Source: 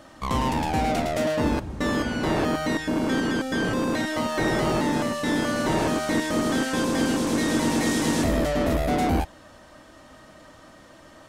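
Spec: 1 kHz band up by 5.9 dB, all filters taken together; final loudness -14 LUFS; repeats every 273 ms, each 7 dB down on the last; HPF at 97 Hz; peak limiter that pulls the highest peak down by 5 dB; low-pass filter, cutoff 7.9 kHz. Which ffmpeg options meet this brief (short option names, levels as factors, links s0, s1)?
-af "highpass=97,lowpass=7900,equalizer=f=1000:t=o:g=7.5,alimiter=limit=0.188:level=0:latency=1,aecho=1:1:273|546|819|1092|1365:0.447|0.201|0.0905|0.0407|0.0183,volume=2.82"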